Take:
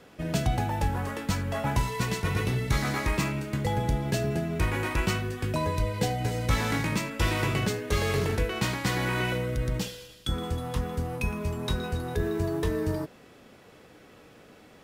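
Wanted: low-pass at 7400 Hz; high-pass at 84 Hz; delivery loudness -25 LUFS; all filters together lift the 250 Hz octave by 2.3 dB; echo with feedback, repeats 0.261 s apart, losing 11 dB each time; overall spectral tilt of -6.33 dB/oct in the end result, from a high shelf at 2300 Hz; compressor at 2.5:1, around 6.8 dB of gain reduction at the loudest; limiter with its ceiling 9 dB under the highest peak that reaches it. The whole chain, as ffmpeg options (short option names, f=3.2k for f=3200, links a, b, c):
-af "highpass=84,lowpass=7.4k,equalizer=f=250:t=o:g=3.5,highshelf=f=2.3k:g=-8.5,acompressor=threshold=-33dB:ratio=2.5,alimiter=level_in=5dB:limit=-24dB:level=0:latency=1,volume=-5dB,aecho=1:1:261|522|783:0.282|0.0789|0.0221,volume=12.5dB"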